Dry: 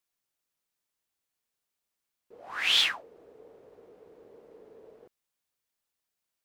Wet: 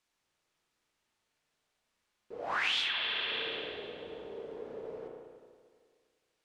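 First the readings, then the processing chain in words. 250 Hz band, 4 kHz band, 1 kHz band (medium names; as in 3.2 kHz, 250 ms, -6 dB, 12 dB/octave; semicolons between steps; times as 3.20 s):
+7.0 dB, -5.0 dB, +3.5 dB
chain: spring tank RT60 1.9 s, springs 33/53 ms, chirp 30 ms, DRR 0.5 dB; compression 6:1, threshold -37 dBFS, peak gain reduction 17 dB; Bessel low-pass 5.9 kHz, order 2; trim +7.5 dB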